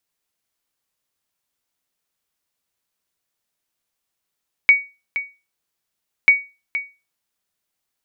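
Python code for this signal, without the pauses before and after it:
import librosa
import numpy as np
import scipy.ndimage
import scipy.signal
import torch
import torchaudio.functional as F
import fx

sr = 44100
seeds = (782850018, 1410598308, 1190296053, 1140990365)

y = fx.sonar_ping(sr, hz=2250.0, decay_s=0.28, every_s=1.59, pings=2, echo_s=0.47, echo_db=-12.5, level_db=-3.5)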